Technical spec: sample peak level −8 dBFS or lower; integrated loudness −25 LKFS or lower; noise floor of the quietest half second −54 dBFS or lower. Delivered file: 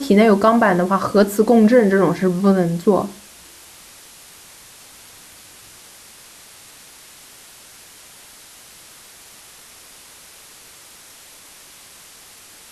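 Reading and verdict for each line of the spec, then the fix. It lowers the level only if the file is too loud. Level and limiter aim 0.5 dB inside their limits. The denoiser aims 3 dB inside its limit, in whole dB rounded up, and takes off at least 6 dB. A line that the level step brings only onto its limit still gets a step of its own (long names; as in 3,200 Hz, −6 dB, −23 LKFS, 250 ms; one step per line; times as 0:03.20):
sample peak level −3.0 dBFS: out of spec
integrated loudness −15.5 LKFS: out of spec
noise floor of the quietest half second −44 dBFS: out of spec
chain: broadband denoise 6 dB, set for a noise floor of −44 dBFS
level −10 dB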